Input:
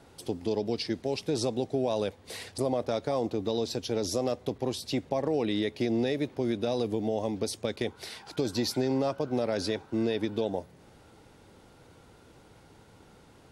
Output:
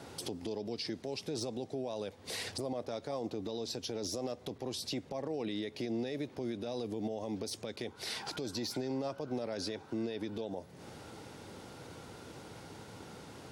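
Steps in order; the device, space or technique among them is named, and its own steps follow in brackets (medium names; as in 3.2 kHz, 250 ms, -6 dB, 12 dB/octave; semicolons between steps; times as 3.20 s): broadcast voice chain (high-pass 88 Hz; de-esser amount 70%; compression 3:1, threshold -42 dBFS, peak gain reduction 13.5 dB; peaking EQ 5.4 kHz +3 dB; peak limiter -35 dBFS, peak gain reduction 9 dB); trim +6.5 dB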